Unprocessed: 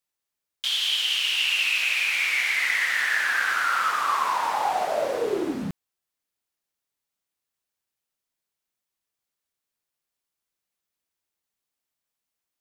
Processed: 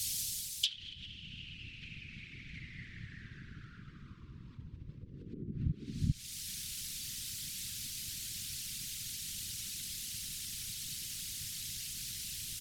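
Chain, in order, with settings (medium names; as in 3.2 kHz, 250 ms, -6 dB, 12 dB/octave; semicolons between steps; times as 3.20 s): comb 5.7 ms, depth 86%; delay 401 ms -9 dB; word length cut 8-bit, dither triangular; low-pass that closes with the level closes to 350 Hz, closed at -18 dBFS; dynamic bell 140 Hz, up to +6 dB, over -49 dBFS, Q 0.86; compression 6:1, threshold -32 dBFS, peak gain reduction 13.5 dB; whisper effect; gain riding within 5 dB 0.5 s; Chebyshev band-stop 130–3900 Hz, order 2; peaking EQ 980 Hz -7 dB 2.6 oct, from 5.34 s 15 kHz; trim +10.5 dB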